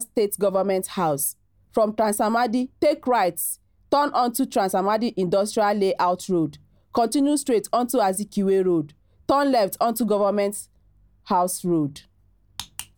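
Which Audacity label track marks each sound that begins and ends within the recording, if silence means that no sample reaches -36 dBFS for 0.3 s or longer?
1.750000	3.540000	sound
3.920000	6.550000	sound
6.950000	8.870000	sound
9.290000	10.630000	sound
11.270000	11.990000	sound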